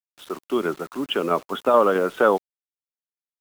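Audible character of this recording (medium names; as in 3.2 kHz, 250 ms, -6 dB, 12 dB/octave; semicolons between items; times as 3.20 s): tremolo saw down 4.6 Hz, depth 40%; a quantiser's noise floor 8-bit, dither none; Vorbis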